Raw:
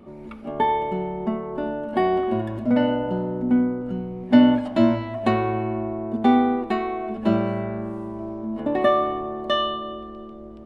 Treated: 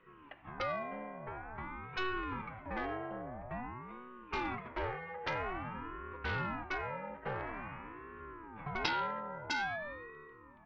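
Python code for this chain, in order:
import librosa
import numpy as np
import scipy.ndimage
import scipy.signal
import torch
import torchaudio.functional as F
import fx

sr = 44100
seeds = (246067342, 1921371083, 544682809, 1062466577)

y = fx.cabinet(x, sr, low_hz=400.0, low_slope=24, high_hz=2200.0, hz=(420.0, 600.0, 900.0, 1800.0), db=(-7, -8, -6, 8))
y = fx.cheby_harmonics(y, sr, harmonics=(3,), levels_db=(-6,), full_scale_db=-9.5)
y = fx.ring_lfo(y, sr, carrier_hz=450.0, swing_pct=65, hz=0.49)
y = F.gain(torch.from_numpy(y), 1.5).numpy()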